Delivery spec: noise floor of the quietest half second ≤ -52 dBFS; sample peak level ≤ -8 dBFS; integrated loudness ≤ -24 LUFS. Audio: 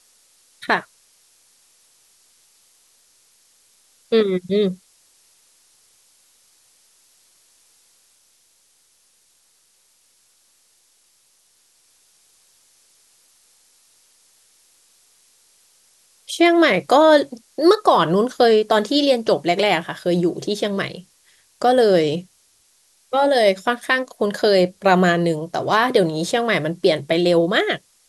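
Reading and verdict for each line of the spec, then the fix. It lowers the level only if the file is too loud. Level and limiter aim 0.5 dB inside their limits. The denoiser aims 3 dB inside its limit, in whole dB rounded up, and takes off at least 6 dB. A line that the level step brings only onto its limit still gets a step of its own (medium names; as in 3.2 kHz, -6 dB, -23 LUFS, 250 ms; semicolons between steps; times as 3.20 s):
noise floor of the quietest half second -60 dBFS: pass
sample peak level -2.5 dBFS: fail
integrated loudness -18.0 LUFS: fail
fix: trim -6.5 dB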